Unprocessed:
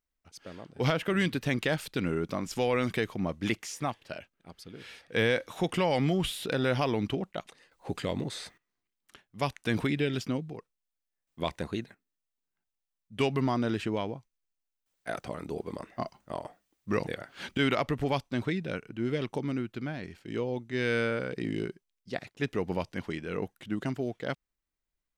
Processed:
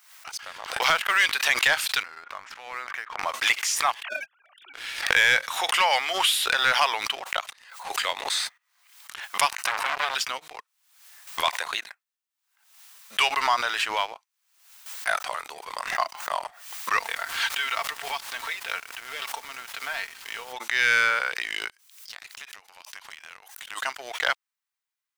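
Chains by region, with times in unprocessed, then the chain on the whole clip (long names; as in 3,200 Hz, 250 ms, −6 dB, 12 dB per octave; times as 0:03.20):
0:00.81–0:01.24: mu-law and A-law mismatch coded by A + noise gate −33 dBFS, range −22 dB
0:02.03–0:03.23: low-pass with resonance 1,700 Hz, resonance Q 1.6 + downward compressor 4 to 1, threshold −42 dBFS
0:04.03–0:04.74: three sine waves on the formant tracks + transient designer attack −11 dB, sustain +11 dB
0:09.48–0:10.15: notch filter 3,400 Hz, Q 7.5 + saturating transformer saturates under 1,900 Hz
0:16.98–0:20.52: downward compressor 10 to 1, threshold −33 dBFS + comb filter 4.4 ms, depth 55% + background noise pink −57 dBFS
0:21.68–0:23.82: high-pass filter 680 Hz 6 dB per octave + high-shelf EQ 3,900 Hz +7 dB + downward compressor 10 to 1, threshold −48 dBFS
whole clip: high-pass filter 890 Hz 24 dB per octave; leveller curve on the samples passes 2; background raised ahead of every attack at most 77 dB per second; level +6.5 dB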